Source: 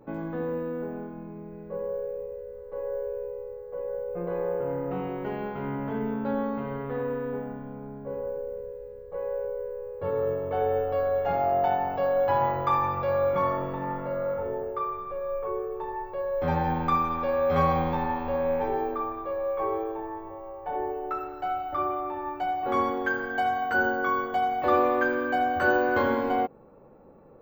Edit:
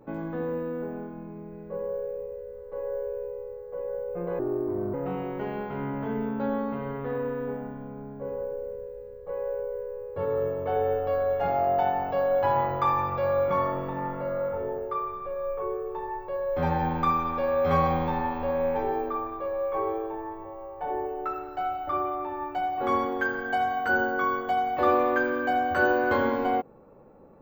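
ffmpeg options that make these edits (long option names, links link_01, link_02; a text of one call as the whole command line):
ffmpeg -i in.wav -filter_complex "[0:a]asplit=3[link_01][link_02][link_03];[link_01]atrim=end=4.394[link_04];[link_02]atrim=start=4.39:end=4.79,asetpts=PTS-STARTPTS,asetrate=32193,aresample=44100,atrim=end_sample=24164,asetpts=PTS-STARTPTS[link_05];[link_03]atrim=start=4.786[link_06];[link_04][link_05]acrossfade=duration=0.004:curve1=hsin:curve2=hsin[link_07];[link_07][link_06]acrossfade=duration=0.004:curve1=hsin:curve2=hsin" out.wav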